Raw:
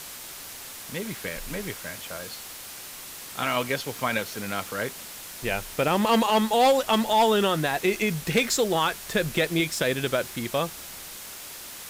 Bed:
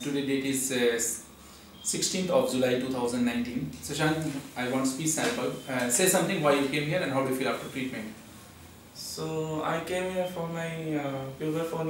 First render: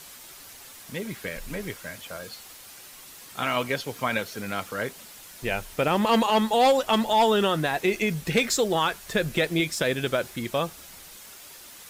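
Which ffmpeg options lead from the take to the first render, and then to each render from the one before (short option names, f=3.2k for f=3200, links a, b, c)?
-af "afftdn=nr=7:nf=-41"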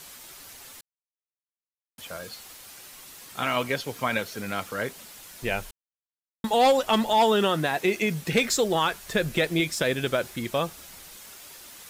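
-filter_complex "[0:a]asettb=1/sr,asplit=3[a][b][c];[a]atrim=end=7.184[d];[b]atrim=start=7.18:end=8.33,asetpts=PTS-STARTPTS,afade=t=in:d=0.004:c=qsin,afade=t=out:st=1.146:d=0.004:c=qsin,highpass=100[e];[c]atrim=start=8.326[f];[d][e]acrossfade=d=0.004:c1=hsin:c2=qsin[g];[g][f]acrossfade=d=0.004:c1=qsin:c2=hsin,asplit=5[h][i][j][k][l];[h]atrim=end=0.81,asetpts=PTS-STARTPTS,afade=t=out:st=0.806:d=0.004:c=hsin[m];[i]atrim=start=0.81:end=1.98,asetpts=PTS-STARTPTS,volume=0[n];[j]atrim=start=1.98:end=5.71,asetpts=PTS-STARTPTS,afade=t=in:d=0.004:c=hsin,afade=t=out:st=3.726:d=0.004:c=hsin[o];[k]atrim=start=5.71:end=6.44,asetpts=PTS-STARTPTS,volume=0[p];[l]atrim=start=6.44,asetpts=PTS-STARTPTS,afade=t=in:d=0.004:c=hsin[q];[m][n][o][p][q]concat=n=5:v=0:a=1"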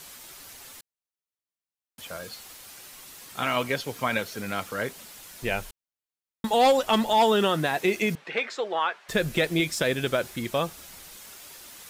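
-filter_complex "[0:a]asettb=1/sr,asplit=3[a][b][c];[a]atrim=end=8.154[d];[b]atrim=start=8.15:end=9.09,asetpts=PTS-STARTPTS,afade=t=in:d=0.004:c=qsin,afade=t=out:st=0.936:d=0.004:c=qsin,highpass=600,lowpass=2.4k[e];[c]atrim=start=9.086[f];[d][e]acrossfade=d=0.004:c1=hsin:c2=qsin[g];[g][f]acrossfade=d=0.004:c1=qsin:c2=hsin"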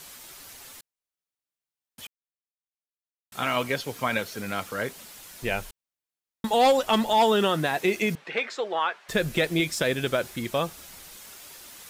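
-filter_complex "[0:a]asplit=3[a][b][c];[a]atrim=end=2.07,asetpts=PTS-STARTPTS,afade=t=out:st=2.066:d=0.004:c=hsin[d];[b]atrim=start=2.07:end=3.32,asetpts=PTS-STARTPTS,volume=0[e];[c]atrim=start=3.32,asetpts=PTS-STARTPTS,afade=t=in:d=0.004:c=hsin[f];[d][e][f]concat=n=3:v=0:a=1"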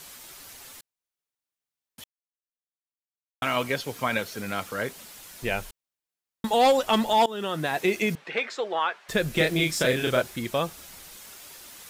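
-filter_complex "[0:a]asettb=1/sr,asplit=3[a][b][c];[a]atrim=end=9.344[d];[b]atrim=start=9.34:end=10.22,asetpts=PTS-STARTPTS,afade=t=in:d=0.004:c=qsin,afade=t=out:st=0.876:d=0.004:c=qsin,asplit=2[e][f];[f]adelay=32,volume=-2.5dB[g];[e][g]amix=inputs=2:normalize=0,atrim=end_sample=38808[h];[c]atrim=start=10.216[i];[d][h]acrossfade=d=0.004:c1=hsin:c2=qsin[j];[j][i]acrossfade=d=0.004:c1=qsin:c2=hsin,asplit=4[k][l][m][n];[k]atrim=end=2.04,asetpts=PTS-STARTPTS,afade=t=out:st=2.036:d=0.004:c=hsin[o];[l]atrim=start=2.04:end=3.42,asetpts=PTS-STARTPTS,volume=0[p];[m]atrim=start=3.42:end=7.26,asetpts=PTS-STARTPTS,afade=t=in:d=0.004:c=hsin,afade=t=out:st=3.836:d=0.004:c=hsin:silence=0.0944061[q];[n]atrim=start=7.26,asetpts=PTS-STARTPTS,afade=t=in:d=0.52:silence=0.0944061[r];[o][p][q][r]concat=n=4:v=0:a=1"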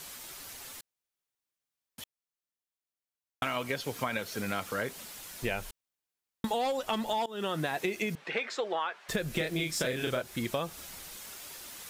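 -af "acompressor=threshold=-28dB:ratio=10"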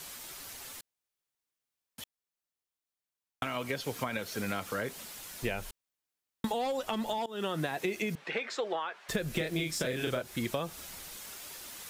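-filter_complex "[0:a]acrossover=split=490[a][b];[b]acompressor=threshold=-32dB:ratio=6[c];[a][c]amix=inputs=2:normalize=0"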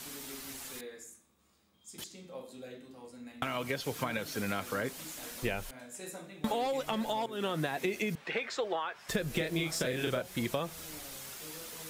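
-filter_complex "[1:a]volume=-21dB[a];[0:a][a]amix=inputs=2:normalize=0"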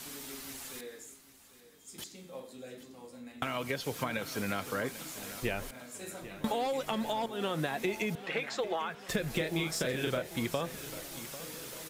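-af "aecho=1:1:795|1590|2385|3180|3975|4770:0.178|0.103|0.0598|0.0347|0.0201|0.0117"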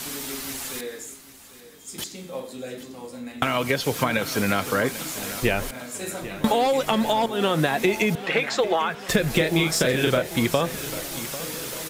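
-af "volume=11.5dB"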